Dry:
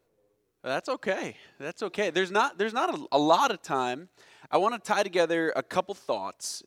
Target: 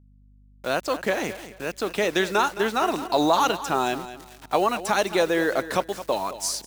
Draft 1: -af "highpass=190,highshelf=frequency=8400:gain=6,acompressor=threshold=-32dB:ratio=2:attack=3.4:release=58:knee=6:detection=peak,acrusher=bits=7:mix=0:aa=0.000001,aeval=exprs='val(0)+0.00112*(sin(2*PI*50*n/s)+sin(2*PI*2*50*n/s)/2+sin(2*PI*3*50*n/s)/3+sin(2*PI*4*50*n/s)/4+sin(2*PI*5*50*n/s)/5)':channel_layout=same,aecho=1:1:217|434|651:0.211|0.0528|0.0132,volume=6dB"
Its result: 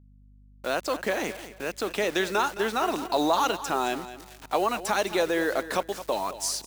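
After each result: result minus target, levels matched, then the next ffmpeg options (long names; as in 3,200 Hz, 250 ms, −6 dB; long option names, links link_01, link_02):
downward compressor: peak gain reduction +3.5 dB; 125 Hz band −2.5 dB
-af "highpass=190,highshelf=frequency=8400:gain=6,acompressor=threshold=-25dB:ratio=2:attack=3.4:release=58:knee=6:detection=peak,acrusher=bits=7:mix=0:aa=0.000001,aeval=exprs='val(0)+0.00112*(sin(2*PI*50*n/s)+sin(2*PI*2*50*n/s)/2+sin(2*PI*3*50*n/s)/3+sin(2*PI*4*50*n/s)/4+sin(2*PI*5*50*n/s)/5)':channel_layout=same,aecho=1:1:217|434|651:0.211|0.0528|0.0132,volume=6dB"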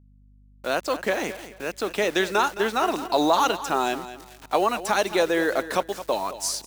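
125 Hz band −4.0 dB
-af "highpass=71,highshelf=frequency=8400:gain=6,acompressor=threshold=-25dB:ratio=2:attack=3.4:release=58:knee=6:detection=peak,acrusher=bits=7:mix=0:aa=0.000001,aeval=exprs='val(0)+0.00112*(sin(2*PI*50*n/s)+sin(2*PI*2*50*n/s)/2+sin(2*PI*3*50*n/s)/3+sin(2*PI*4*50*n/s)/4+sin(2*PI*5*50*n/s)/5)':channel_layout=same,aecho=1:1:217|434|651:0.211|0.0528|0.0132,volume=6dB"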